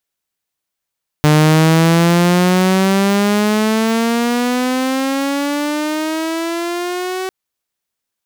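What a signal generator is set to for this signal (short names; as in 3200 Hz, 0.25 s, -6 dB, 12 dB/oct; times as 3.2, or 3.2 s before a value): gliding synth tone saw, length 6.05 s, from 150 Hz, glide +16 st, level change -12 dB, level -5 dB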